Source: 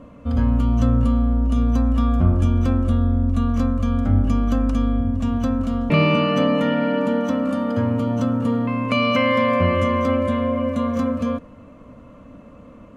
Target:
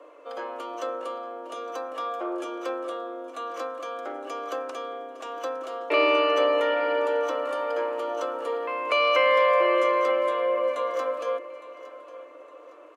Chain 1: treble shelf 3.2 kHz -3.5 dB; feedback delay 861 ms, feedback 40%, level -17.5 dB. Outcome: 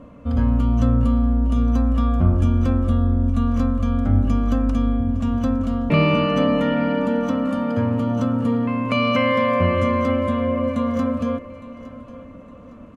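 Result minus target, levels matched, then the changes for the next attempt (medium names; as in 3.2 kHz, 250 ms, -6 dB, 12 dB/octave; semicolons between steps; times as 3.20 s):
250 Hz band +14.0 dB
add first: steep high-pass 320 Hz 96 dB/octave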